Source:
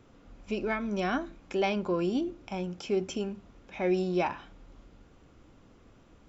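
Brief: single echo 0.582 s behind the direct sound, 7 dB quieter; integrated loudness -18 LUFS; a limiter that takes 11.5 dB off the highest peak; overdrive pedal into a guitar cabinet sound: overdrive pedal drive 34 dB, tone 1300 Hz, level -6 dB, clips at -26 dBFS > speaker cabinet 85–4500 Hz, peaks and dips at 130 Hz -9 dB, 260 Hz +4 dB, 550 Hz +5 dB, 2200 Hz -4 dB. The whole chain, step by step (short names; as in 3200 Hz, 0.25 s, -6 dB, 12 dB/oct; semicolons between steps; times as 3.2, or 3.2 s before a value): limiter -29 dBFS; echo 0.582 s -7 dB; overdrive pedal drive 34 dB, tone 1300 Hz, level -6 dB, clips at -26 dBFS; speaker cabinet 85–4500 Hz, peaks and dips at 130 Hz -9 dB, 260 Hz +4 dB, 550 Hz +5 dB, 2200 Hz -4 dB; gain +15 dB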